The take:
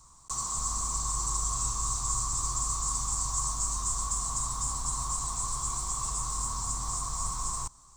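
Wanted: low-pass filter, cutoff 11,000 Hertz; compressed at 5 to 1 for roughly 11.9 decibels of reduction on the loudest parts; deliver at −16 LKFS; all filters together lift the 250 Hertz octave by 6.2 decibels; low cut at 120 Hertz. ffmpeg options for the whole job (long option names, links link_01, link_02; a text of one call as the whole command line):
ffmpeg -i in.wav -af "highpass=120,lowpass=11000,equalizer=frequency=250:width_type=o:gain=9,acompressor=threshold=-42dB:ratio=5,volume=25.5dB" out.wav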